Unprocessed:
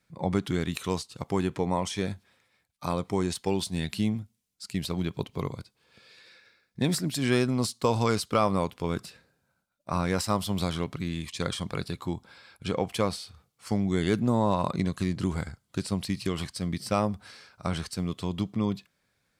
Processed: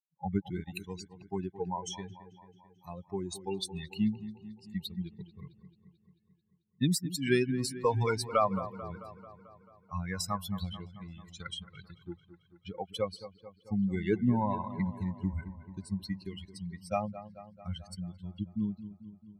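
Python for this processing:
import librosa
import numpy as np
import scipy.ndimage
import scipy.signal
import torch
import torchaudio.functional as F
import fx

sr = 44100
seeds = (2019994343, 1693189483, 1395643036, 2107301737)

y = fx.bin_expand(x, sr, power=3.0)
y = fx.echo_wet_lowpass(y, sr, ms=220, feedback_pct=62, hz=2000.0, wet_db=-13.5)
y = y * 10.0 ** (2.5 / 20.0)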